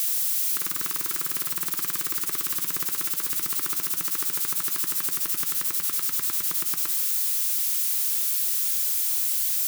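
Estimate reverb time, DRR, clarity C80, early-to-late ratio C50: 2.1 s, 10.0 dB, 11.5 dB, 10.5 dB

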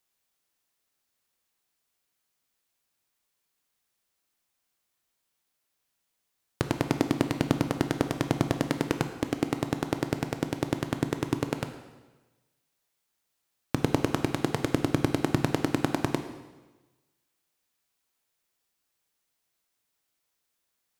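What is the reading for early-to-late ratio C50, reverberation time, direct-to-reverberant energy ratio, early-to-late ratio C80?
9.0 dB, 1.2 s, 7.0 dB, 10.5 dB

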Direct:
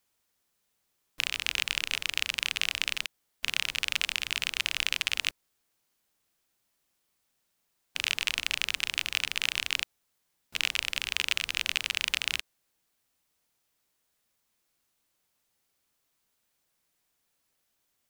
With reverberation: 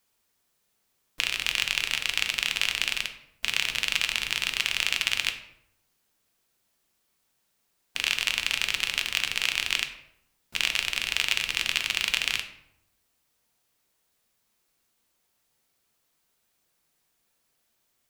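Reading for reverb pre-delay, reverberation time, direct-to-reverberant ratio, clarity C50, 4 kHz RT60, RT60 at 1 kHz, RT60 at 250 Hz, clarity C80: 3 ms, 0.75 s, 5.5 dB, 10.5 dB, 0.50 s, 0.70 s, 0.90 s, 13.0 dB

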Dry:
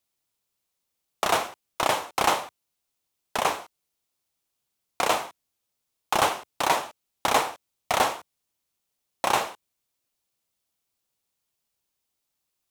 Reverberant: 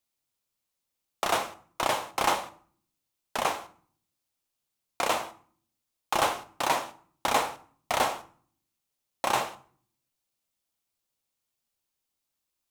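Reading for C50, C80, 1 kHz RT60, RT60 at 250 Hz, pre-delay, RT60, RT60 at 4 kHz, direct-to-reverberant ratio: 17.0 dB, 20.5 dB, 0.50 s, 0.75 s, 3 ms, 0.50 s, 0.40 s, 10.5 dB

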